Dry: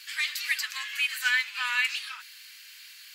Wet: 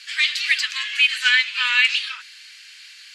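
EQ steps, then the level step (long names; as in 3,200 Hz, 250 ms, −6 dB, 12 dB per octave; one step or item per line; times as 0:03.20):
high-pass filter 1,200 Hz 12 dB per octave
Bessel low-pass filter 6,800 Hz, order 8
dynamic equaliser 3,200 Hz, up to +7 dB, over −42 dBFS, Q 1.4
+6.5 dB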